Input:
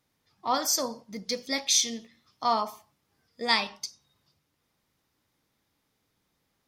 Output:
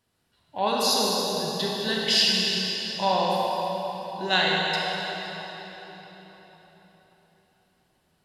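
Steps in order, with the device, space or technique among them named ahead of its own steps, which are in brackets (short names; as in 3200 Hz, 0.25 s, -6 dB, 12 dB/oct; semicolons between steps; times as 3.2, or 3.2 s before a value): slowed and reverbed (varispeed -19%; reverb RT60 4.5 s, pre-delay 30 ms, DRR -3.5 dB)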